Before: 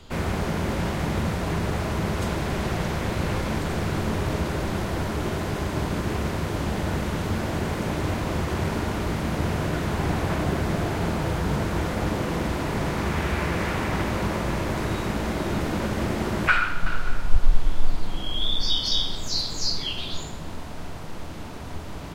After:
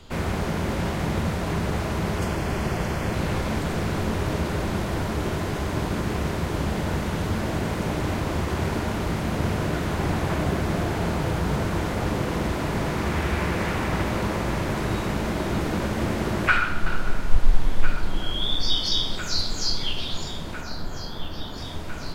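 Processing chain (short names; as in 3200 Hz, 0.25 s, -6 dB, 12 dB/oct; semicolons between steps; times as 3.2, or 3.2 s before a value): 2.18–3.14 notch 3800 Hz, Q 5.8; 20.61–21.58 spectral delete 1900–11000 Hz; echo with dull and thin repeats by turns 0.676 s, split 830 Hz, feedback 85%, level -12.5 dB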